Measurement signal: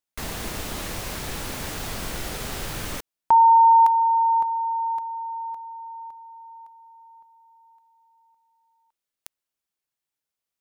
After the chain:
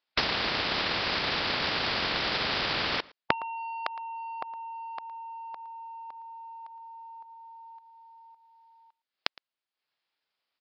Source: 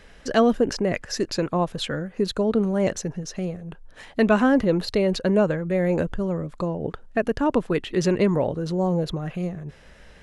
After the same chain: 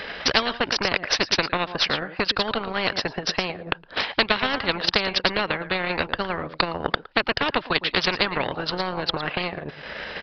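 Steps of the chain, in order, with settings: HPF 580 Hz 6 dB/oct; on a send: echo 0.113 s -16.5 dB; on the sum: transient shaper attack +12 dB, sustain -9 dB; downsampling 11025 Hz; spectral compressor 4:1; gain -3.5 dB

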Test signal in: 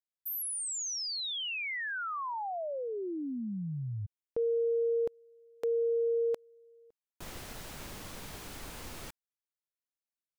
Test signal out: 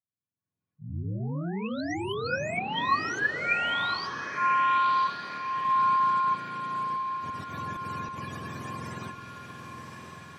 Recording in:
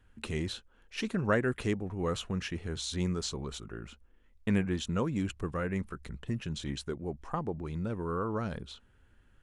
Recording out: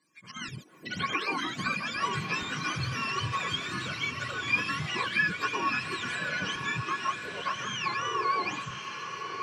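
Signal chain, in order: spectrum mirrored in octaves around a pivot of 700 Hz; HPF 130 Hz 12 dB/oct; AGC gain up to 15 dB; limiter -13.5 dBFS; compressor, threshold -22 dBFS; auto swell 0.104 s; small resonant body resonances 1100/1700/2400 Hz, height 17 dB, ringing for 75 ms; echoes that change speed 0.144 s, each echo +5 st, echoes 3, each echo -6 dB; air absorption 55 m; diffused feedback echo 1.117 s, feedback 46%, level -7 dB; mismatched tape noise reduction encoder only; gain -9 dB

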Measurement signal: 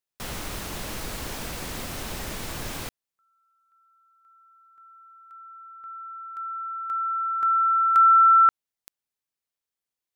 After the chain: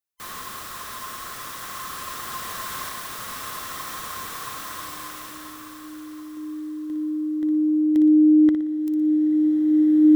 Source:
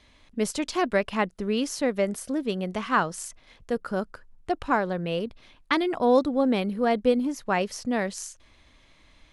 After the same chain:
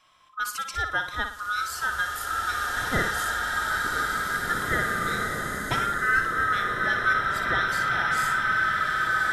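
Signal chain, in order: band-swap scrambler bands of 1000 Hz; high shelf 9300 Hz +6 dB; on a send: flutter echo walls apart 10.1 m, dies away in 0.43 s; on the sum: bloom reverb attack 2.44 s, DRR -2.5 dB; gain -4 dB

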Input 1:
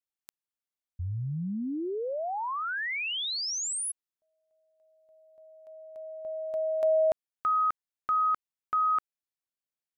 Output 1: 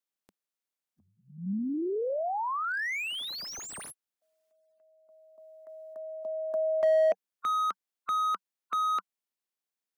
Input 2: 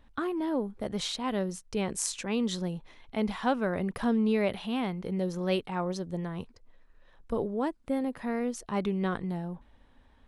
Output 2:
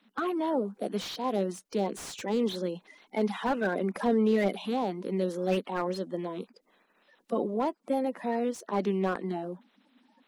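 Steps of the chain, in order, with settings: bin magnitudes rounded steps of 30 dB; elliptic high-pass 190 Hz, stop band 40 dB; slew limiter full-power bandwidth 43 Hz; gain +2.5 dB

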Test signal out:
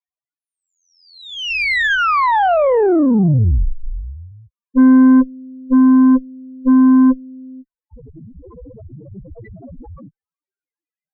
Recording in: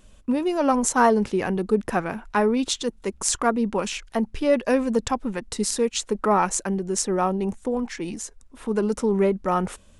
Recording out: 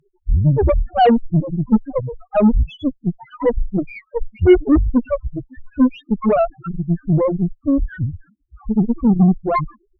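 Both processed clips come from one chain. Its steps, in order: in parallel at +3 dB: vocal rider within 4 dB 2 s; on the sum: mistuned SSB -210 Hz 230–3000 Hz; loudest bins only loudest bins 1; added harmonics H 5 -39 dB, 8 -22 dB, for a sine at -8 dBFS; gain +6.5 dB

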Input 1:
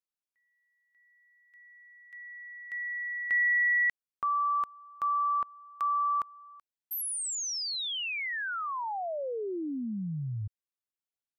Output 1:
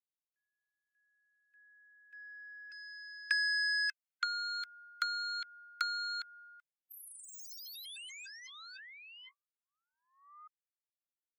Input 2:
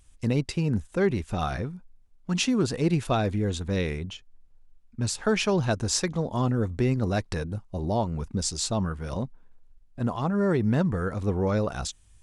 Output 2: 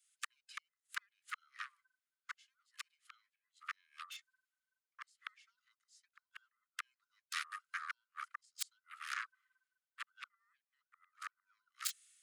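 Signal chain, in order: band inversion scrambler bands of 500 Hz; flipped gate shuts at -19 dBFS, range -34 dB; compressor 2:1, threshold -36 dBFS; dynamic EQ 3000 Hz, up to -3 dB, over -51 dBFS, Q 2; added harmonics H 7 -13 dB, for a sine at -20.5 dBFS; steep high-pass 1200 Hz 96 dB/oct; notch 5800 Hz, Q 16; three-band expander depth 40%; gain +3.5 dB

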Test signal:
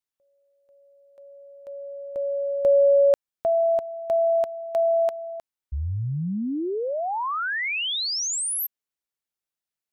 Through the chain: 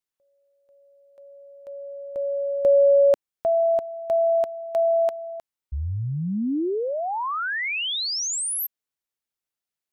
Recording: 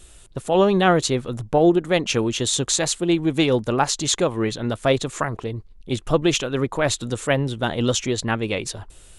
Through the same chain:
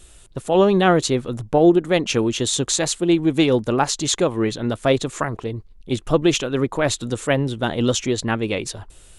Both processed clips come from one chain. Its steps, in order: dynamic EQ 300 Hz, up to +3 dB, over -31 dBFS, Q 1.1

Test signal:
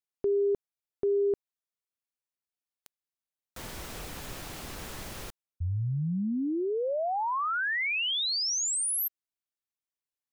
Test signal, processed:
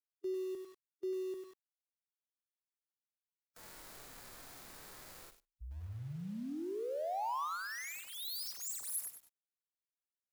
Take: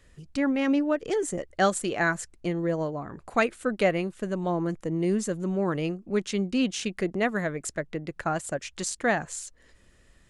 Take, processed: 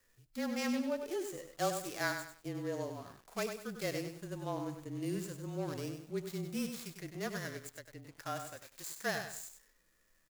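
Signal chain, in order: median filter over 15 samples; harmonic-percussive split percussive -12 dB; low shelf 220 Hz -6 dB; frequency shift -28 Hz; pre-emphasis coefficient 0.9; on a send: feedback echo 74 ms, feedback 32%, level -23 dB; on the sum: lo-fi delay 98 ms, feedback 35%, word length 11-bit, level -7 dB; gain +9.5 dB

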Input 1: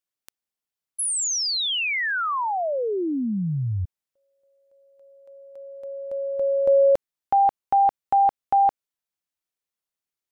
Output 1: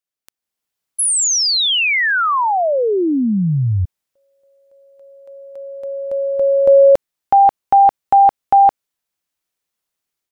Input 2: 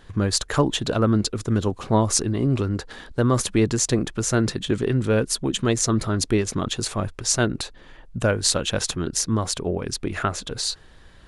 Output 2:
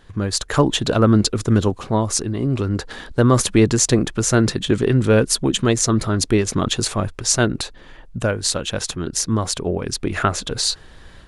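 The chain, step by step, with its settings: AGC gain up to 10 dB; gain -1 dB

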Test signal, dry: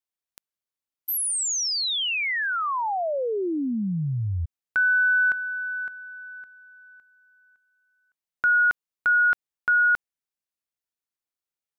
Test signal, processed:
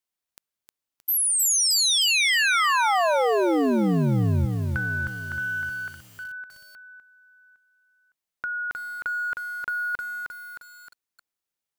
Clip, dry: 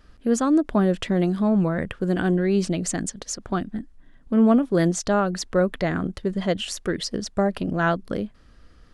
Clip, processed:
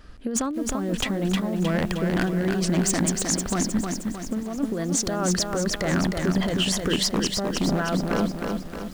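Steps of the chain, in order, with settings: negative-ratio compressor -26 dBFS, ratio -1; wavefolder -18 dBFS; lo-fi delay 0.311 s, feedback 55%, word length 8-bit, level -4 dB; gain +1.5 dB

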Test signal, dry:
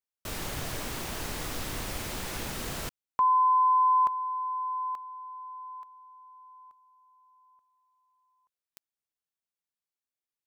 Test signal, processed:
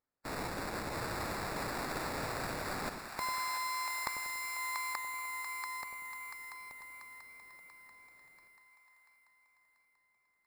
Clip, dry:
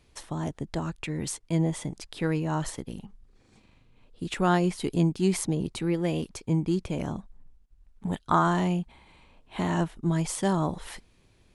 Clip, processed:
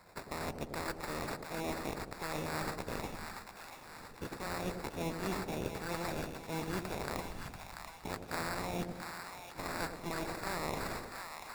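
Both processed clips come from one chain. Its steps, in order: spectral limiter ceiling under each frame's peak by 25 dB; reverse; compressor 6:1, threshold -37 dBFS; reverse; sample-rate reducer 3100 Hz, jitter 0%; split-band echo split 720 Hz, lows 95 ms, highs 0.687 s, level -6 dB; warbling echo 0.116 s, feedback 73%, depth 190 cents, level -21 dB; gain +1 dB

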